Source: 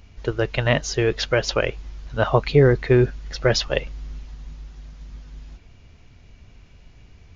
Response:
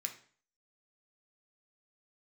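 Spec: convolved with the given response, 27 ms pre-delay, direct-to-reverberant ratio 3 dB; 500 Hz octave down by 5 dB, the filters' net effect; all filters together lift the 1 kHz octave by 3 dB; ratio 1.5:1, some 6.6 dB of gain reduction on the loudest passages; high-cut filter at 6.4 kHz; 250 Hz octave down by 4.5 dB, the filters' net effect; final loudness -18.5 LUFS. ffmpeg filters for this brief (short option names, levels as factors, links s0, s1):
-filter_complex "[0:a]lowpass=6400,equalizer=f=250:t=o:g=-5,equalizer=f=500:t=o:g=-6,equalizer=f=1000:t=o:g=6,acompressor=threshold=0.0282:ratio=1.5,asplit=2[s0][s1];[1:a]atrim=start_sample=2205,adelay=27[s2];[s1][s2]afir=irnorm=-1:irlink=0,volume=0.794[s3];[s0][s3]amix=inputs=2:normalize=0,volume=2.66"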